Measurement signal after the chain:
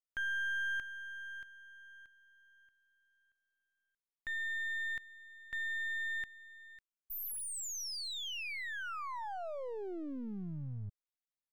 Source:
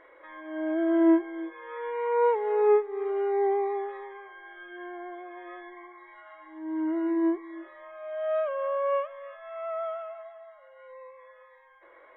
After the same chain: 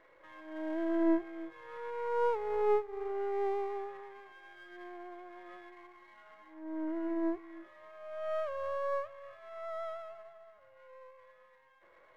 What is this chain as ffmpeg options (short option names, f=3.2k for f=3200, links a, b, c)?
-af "aeval=exprs='if(lt(val(0),0),0.447*val(0),val(0))':c=same,volume=-5.5dB"